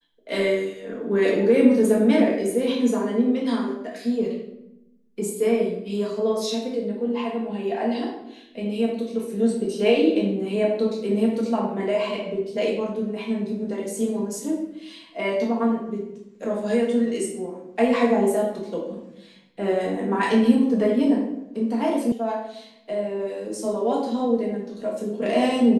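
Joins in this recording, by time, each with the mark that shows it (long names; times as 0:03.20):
0:22.12: cut off before it has died away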